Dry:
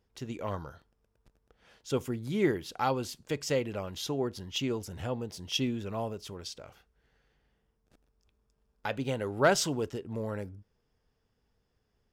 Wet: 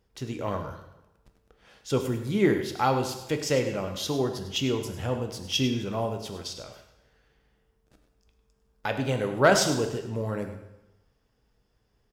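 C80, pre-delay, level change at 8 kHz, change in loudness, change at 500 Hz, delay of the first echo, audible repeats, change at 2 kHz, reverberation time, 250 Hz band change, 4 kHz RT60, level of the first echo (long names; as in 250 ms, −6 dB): 8.5 dB, 5 ms, +5.0 dB, +5.0 dB, +5.0 dB, 101 ms, 1, +5.5 dB, 0.95 s, +5.0 dB, 0.90 s, −11.5 dB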